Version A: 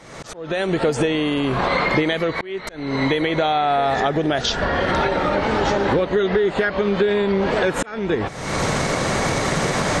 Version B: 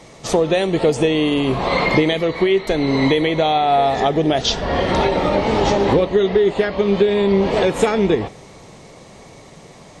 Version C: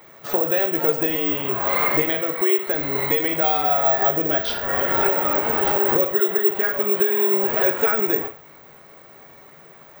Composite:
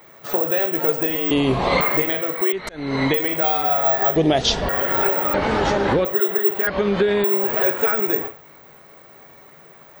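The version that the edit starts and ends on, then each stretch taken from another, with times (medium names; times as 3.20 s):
C
1.31–1.81 s: from B
2.52–3.14 s: from A
4.16–4.69 s: from B
5.34–6.05 s: from A
6.67–7.24 s: from A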